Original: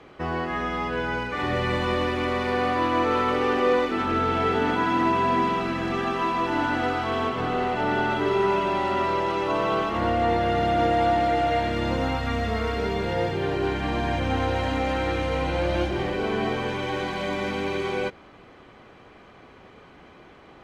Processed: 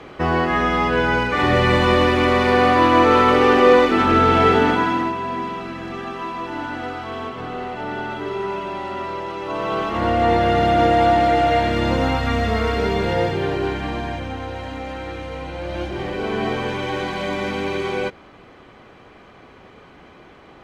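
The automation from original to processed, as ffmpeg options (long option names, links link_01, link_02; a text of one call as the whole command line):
ffmpeg -i in.wav -af "volume=27dB,afade=type=out:start_time=4.48:duration=0.67:silence=0.237137,afade=type=in:start_time=9.4:duration=0.94:silence=0.334965,afade=type=out:start_time=13.09:duration=1.27:silence=0.281838,afade=type=in:start_time=15.59:duration=0.92:silence=0.375837" out.wav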